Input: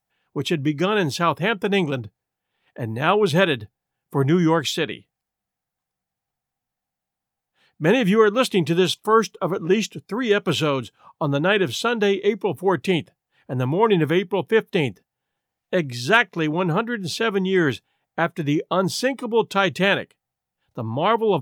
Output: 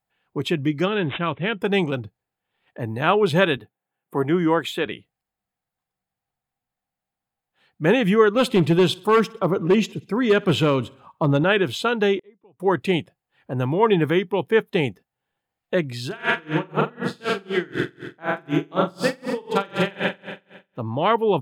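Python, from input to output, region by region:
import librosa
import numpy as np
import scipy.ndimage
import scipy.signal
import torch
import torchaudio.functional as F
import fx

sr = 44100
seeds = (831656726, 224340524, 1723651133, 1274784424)

y = fx.chain(x, sr, fx.peak_eq(hz=910.0, db=-7.5, octaves=1.7),
    fx.resample_bad(factor=6, down='none', up='filtered'), at=(0.88, 1.61))
y = fx.chain(y, sr, fx.highpass(hz=200.0, slope=12),
    fx.peak_eq(hz=5200.0, db=-13.0, octaves=0.65), at=(3.57, 4.86))
y = fx.chain(y, sr, fx.low_shelf(hz=410.0, db=5.5),
    fx.clip_hard(threshold_db=-11.0),
    fx.echo_feedback(ms=62, feedback_pct=55, wet_db=-23.5), at=(8.35, 11.44))
y = fx.chain(y, sr, fx.air_absorb(metres=280.0),
    fx.gate_flip(shuts_db=-28.0, range_db=-30), at=(12.19, 12.6))
y = fx.chain(y, sr, fx.room_flutter(wall_m=7.8, rt60_s=1.3),
    fx.tremolo_db(hz=4.0, depth_db=30), at=(16.06, 20.79))
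y = fx.bass_treble(y, sr, bass_db=-1, treble_db=-4)
y = fx.notch(y, sr, hz=5800.0, q=7.1)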